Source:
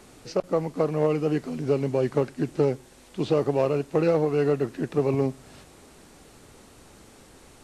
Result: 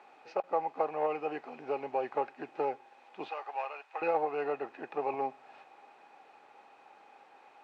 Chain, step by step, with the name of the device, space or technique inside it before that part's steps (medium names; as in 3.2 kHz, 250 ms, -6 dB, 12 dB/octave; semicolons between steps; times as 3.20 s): tin-can telephone (band-pass 650–2100 Hz; small resonant body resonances 810/2500 Hz, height 14 dB, ringing for 40 ms); 3.28–4.02 s: high-pass 1.1 kHz 12 dB/octave; trim -3.5 dB